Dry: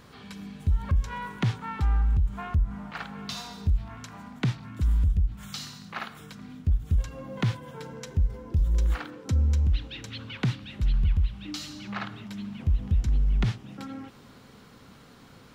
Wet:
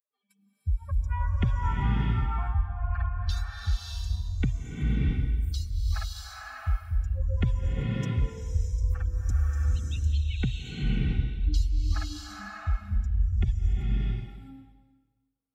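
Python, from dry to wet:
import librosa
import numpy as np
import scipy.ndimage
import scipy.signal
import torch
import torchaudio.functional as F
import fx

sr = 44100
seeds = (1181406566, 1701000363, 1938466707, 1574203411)

y = fx.bin_expand(x, sr, power=3.0)
y = fx.rev_bloom(y, sr, seeds[0], attack_ms=640, drr_db=-4.5)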